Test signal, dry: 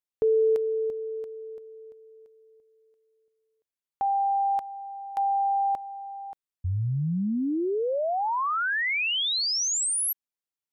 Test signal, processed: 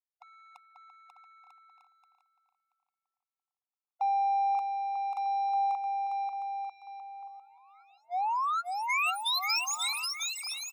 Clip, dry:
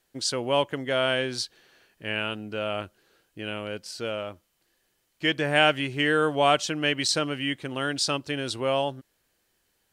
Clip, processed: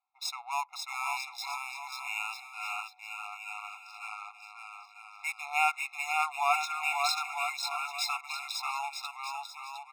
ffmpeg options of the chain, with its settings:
-af "adynamicsmooth=sensitivity=6.5:basefreq=1.5k,aecho=1:1:540|945|1249|1477|1647:0.631|0.398|0.251|0.158|0.1,afftfilt=real='re*eq(mod(floor(b*sr/1024/700),2),1)':imag='im*eq(mod(floor(b*sr/1024/700),2),1)':win_size=1024:overlap=0.75,volume=-2.5dB"

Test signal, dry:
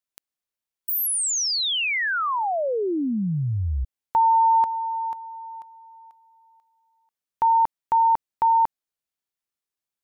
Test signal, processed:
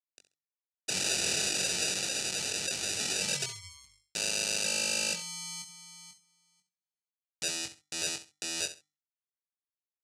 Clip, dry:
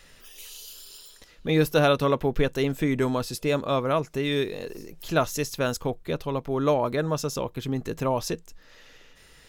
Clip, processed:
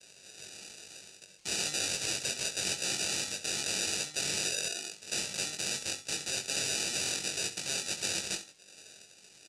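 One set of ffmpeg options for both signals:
-filter_complex "[0:a]agate=range=-33dB:threshold=-53dB:ratio=3:release=77:detection=rms,highshelf=f=2.9k:g=-7.5,bandreject=f=50:t=h:w=6,bandreject=f=100:t=h:w=6,bandreject=f=150:t=h:w=6,bandreject=f=200:t=h:w=6,bandreject=f=250:t=h:w=6,bandreject=f=300:t=h:w=6,acrossover=split=170|550|3000[a][b][c][d];[a]acompressor=threshold=-47dB:ratio=8:attack=0.29:release=83:detection=peak[e];[e][b][c][d]amix=inputs=4:normalize=0,acrusher=samples=41:mix=1:aa=0.000001,aeval=exprs='(mod(26.6*val(0)+1,2)-1)/26.6':c=same,highpass=130,equalizer=f=150:t=q:w=4:g=-3,equalizer=f=260:t=q:w=4:g=-9,equalizer=f=1.5k:t=q:w=4:g=8,equalizer=f=3.4k:t=q:w=4:g=-7,lowpass=f=8.8k:w=0.5412,lowpass=f=8.8k:w=1.3066,asplit=2[f][g];[g]adelay=21,volume=-5.5dB[h];[f][h]amix=inputs=2:normalize=0,aecho=1:1:67|134:0.224|0.0448,aexciter=amount=10.3:drive=6.8:freq=2.3k,volume=-8dB"

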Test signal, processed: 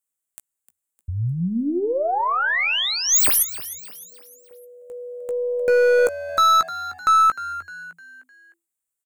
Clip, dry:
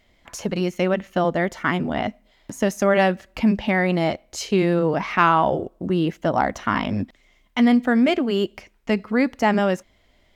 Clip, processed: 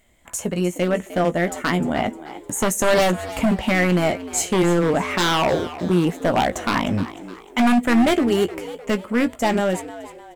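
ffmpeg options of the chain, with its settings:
-filter_complex "[0:a]highshelf=f=6.4k:t=q:w=3:g=8,dynaudnorm=f=250:g=17:m=7dB,aeval=exprs='0.251*(abs(mod(val(0)/0.251+3,4)-2)-1)':c=same,aeval=exprs='0.251*(cos(1*acos(clip(val(0)/0.251,-1,1)))-cos(1*PI/2))+0.00891*(cos(2*acos(clip(val(0)/0.251,-1,1)))-cos(2*PI/2))':c=same,asplit=2[a][b];[b]adelay=17,volume=-10.5dB[c];[a][c]amix=inputs=2:normalize=0,asplit=5[d][e][f][g][h];[e]adelay=305,afreqshift=84,volume=-15dB[i];[f]adelay=610,afreqshift=168,volume=-22.3dB[j];[g]adelay=915,afreqshift=252,volume=-29.7dB[k];[h]adelay=1220,afreqshift=336,volume=-37dB[l];[d][i][j][k][l]amix=inputs=5:normalize=0"

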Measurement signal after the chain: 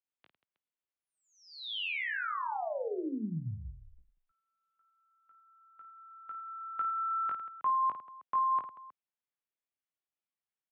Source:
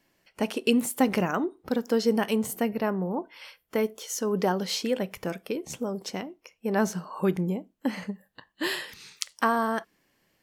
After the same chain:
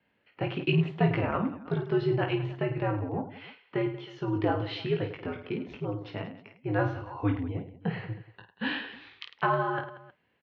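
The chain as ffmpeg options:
-af "aecho=1:1:20|52|103.2|185.1|316.2:0.631|0.398|0.251|0.158|0.1,highpass=f=190:t=q:w=0.5412,highpass=f=190:t=q:w=1.307,lowpass=f=3.5k:t=q:w=0.5176,lowpass=f=3.5k:t=q:w=0.7071,lowpass=f=3.5k:t=q:w=1.932,afreqshift=-87,volume=-3.5dB"

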